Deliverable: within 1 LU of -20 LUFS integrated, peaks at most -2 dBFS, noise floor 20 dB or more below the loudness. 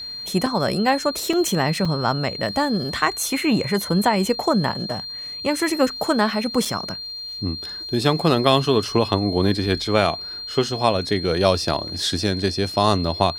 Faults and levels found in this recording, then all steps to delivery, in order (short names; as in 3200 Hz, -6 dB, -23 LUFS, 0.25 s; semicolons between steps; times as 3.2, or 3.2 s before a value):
dropouts 4; longest dropout 4.2 ms; steady tone 4200 Hz; tone level -30 dBFS; loudness -21.5 LUFS; peak -1.0 dBFS; loudness target -20.0 LUFS
-> interpolate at 0.46/1.33/1.85/6.65, 4.2 ms; notch 4200 Hz, Q 30; gain +1.5 dB; limiter -2 dBFS